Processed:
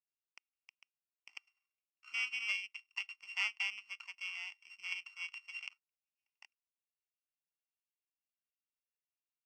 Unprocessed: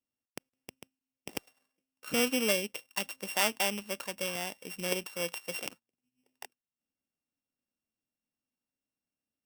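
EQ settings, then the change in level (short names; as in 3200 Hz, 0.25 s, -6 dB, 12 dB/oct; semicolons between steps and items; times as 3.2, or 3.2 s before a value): dynamic EQ 2400 Hz, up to +6 dB, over -44 dBFS, Q 1; ladder band-pass 2400 Hz, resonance 25%; fixed phaser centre 2500 Hz, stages 8; +3.5 dB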